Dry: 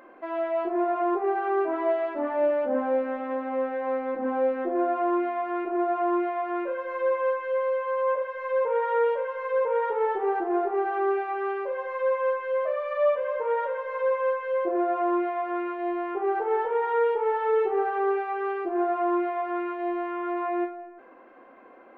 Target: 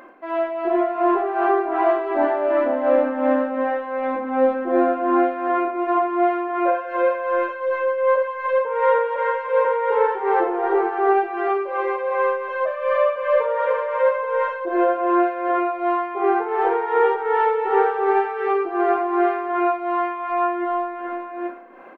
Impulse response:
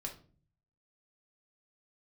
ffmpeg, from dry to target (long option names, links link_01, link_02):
-af "equalizer=frequency=460:width_type=o:width=0.82:gain=-3,aecho=1:1:87|302|367|398|425|827:0.141|0.473|0.119|0.133|0.422|0.501,tremolo=f=2.7:d=0.59,volume=8dB"